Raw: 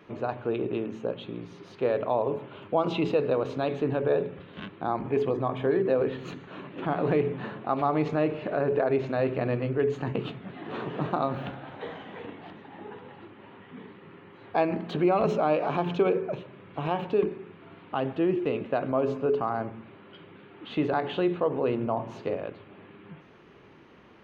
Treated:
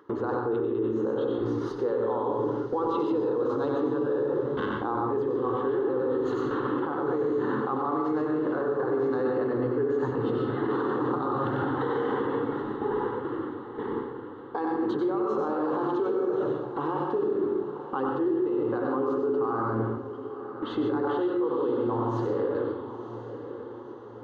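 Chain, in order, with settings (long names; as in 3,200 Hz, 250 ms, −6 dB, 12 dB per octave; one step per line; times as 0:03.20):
phaser with its sweep stopped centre 650 Hz, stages 6
in parallel at −1.5 dB: upward compression, threshold −29 dBFS
on the sum: high-pass filter 130 Hz 12 dB per octave
noise gate with hold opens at −28 dBFS
high-shelf EQ 3,500 Hz −11.5 dB
convolution reverb RT60 0.75 s, pre-delay 94 ms, DRR 0 dB
reversed playback
downward compressor 6 to 1, threshold −26 dBFS, peak gain reduction 13 dB
reversed playback
brickwall limiter −26 dBFS, peak gain reduction 8.5 dB
feedback delay with all-pass diffusion 991 ms, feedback 53%, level −11.5 dB
level +6 dB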